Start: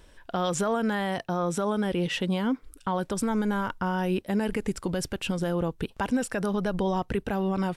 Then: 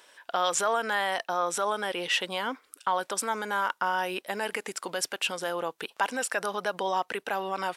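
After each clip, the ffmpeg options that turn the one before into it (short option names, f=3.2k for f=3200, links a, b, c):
-af "highpass=720,volume=5dB"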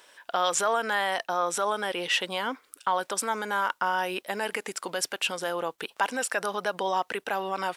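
-af "acrusher=bits=11:mix=0:aa=0.000001,volume=1dB"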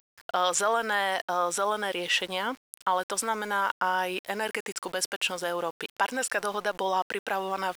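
-af "aeval=exprs='val(0)*gte(abs(val(0)),0.00631)':c=same"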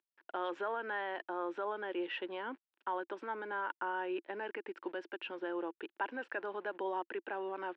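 -af "highpass=f=270:w=0.5412,highpass=f=270:w=1.3066,equalizer=f=340:t=q:w=4:g=9,equalizer=f=490:t=q:w=4:g=-5,equalizer=f=700:t=q:w=4:g=-8,equalizer=f=1.2k:t=q:w=4:g=-9,equalizer=f=2.1k:t=q:w=4:g=-8,lowpass=f=2.3k:w=0.5412,lowpass=f=2.3k:w=1.3066,volume=-6.5dB"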